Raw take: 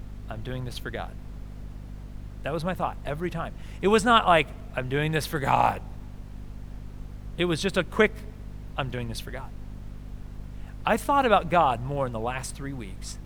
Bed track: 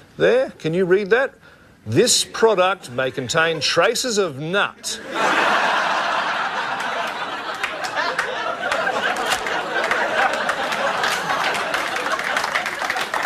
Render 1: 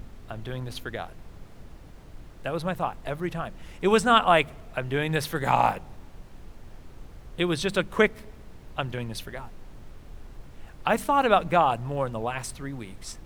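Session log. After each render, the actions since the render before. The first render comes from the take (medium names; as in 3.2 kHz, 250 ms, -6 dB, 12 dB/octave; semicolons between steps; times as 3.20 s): de-hum 50 Hz, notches 5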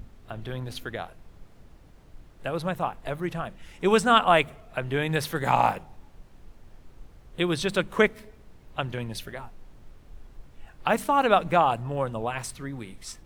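noise print and reduce 6 dB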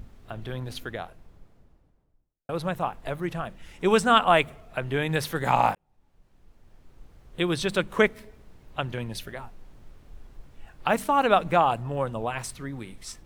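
0.75–2.49 s: studio fade out; 5.75–7.47 s: fade in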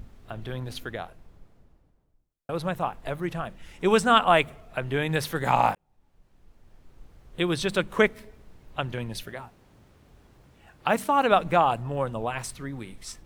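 9.23–11.32 s: high-pass 71 Hz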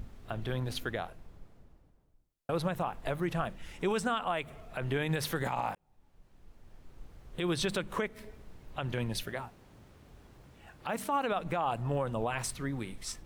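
compression 6:1, threshold -25 dBFS, peak gain reduction 12 dB; peak limiter -21.5 dBFS, peak gain reduction 11 dB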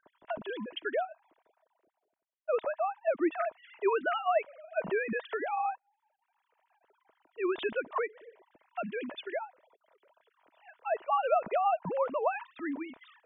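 formants replaced by sine waves; small resonant body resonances 640/960 Hz, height 7 dB, ringing for 35 ms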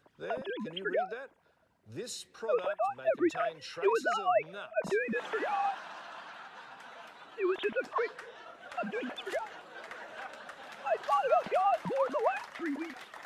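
add bed track -25.5 dB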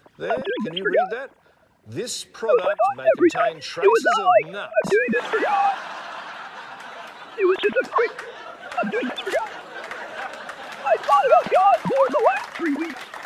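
trim +12 dB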